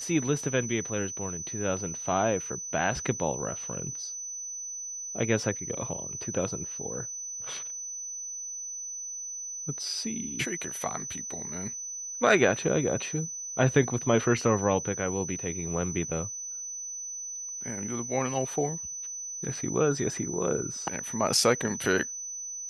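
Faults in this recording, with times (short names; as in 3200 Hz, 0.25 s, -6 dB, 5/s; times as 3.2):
tone 6000 Hz -35 dBFS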